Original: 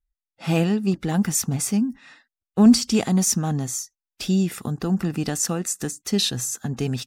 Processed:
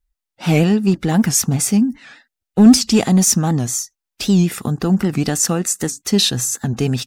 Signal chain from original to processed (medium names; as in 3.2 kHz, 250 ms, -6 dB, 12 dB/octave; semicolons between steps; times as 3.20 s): 1.60–2.79 s: band-stop 1.1 kHz, Q 5.4; in parallel at -5 dB: hard clipper -16 dBFS, distortion -10 dB; on the sum: warped record 78 rpm, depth 160 cents; trim +3 dB